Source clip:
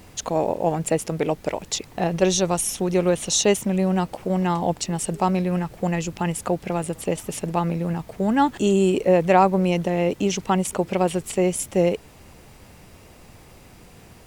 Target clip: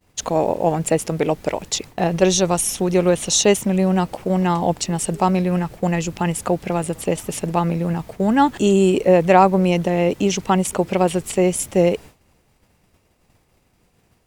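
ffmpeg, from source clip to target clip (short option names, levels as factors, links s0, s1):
-af "agate=range=0.0224:threshold=0.0178:ratio=3:detection=peak,volume=1.5"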